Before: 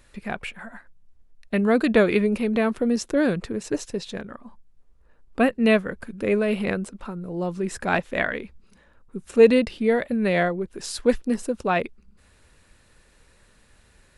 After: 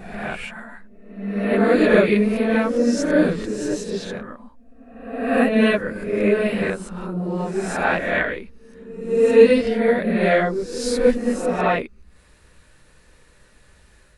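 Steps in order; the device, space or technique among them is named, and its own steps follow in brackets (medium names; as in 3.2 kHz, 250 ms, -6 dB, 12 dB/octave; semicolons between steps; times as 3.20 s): reverse reverb (reverse; reverberation RT60 0.95 s, pre-delay 11 ms, DRR -5.5 dB; reverse); trim -3 dB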